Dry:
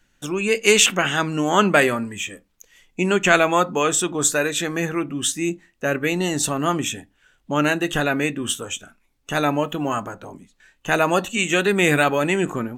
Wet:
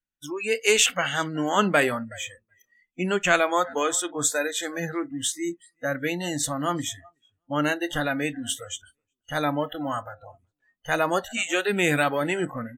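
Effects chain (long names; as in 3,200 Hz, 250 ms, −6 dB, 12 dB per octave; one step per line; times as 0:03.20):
repeating echo 373 ms, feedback 24%, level −21 dB
noise reduction from a noise print of the clip's start 27 dB
level −4.5 dB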